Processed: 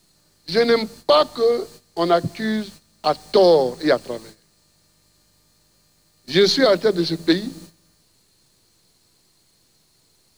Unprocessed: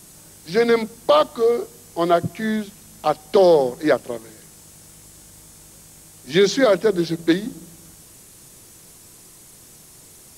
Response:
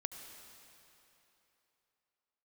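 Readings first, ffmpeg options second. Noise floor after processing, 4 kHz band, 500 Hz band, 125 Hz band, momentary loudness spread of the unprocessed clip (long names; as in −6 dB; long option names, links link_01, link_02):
−61 dBFS, +5.5 dB, 0.0 dB, 0.0 dB, 11 LU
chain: -filter_complex "[0:a]agate=range=-14dB:threshold=-40dB:ratio=16:detection=peak,equalizer=frequency=4300:width_type=o:width=0.26:gain=14.5,acrossover=split=120|1200|6200[link_01][link_02][link_03][link_04];[link_04]aeval=exprs='max(val(0),0)':channel_layout=same[link_05];[link_01][link_02][link_03][link_05]amix=inputs=4:normalize=0"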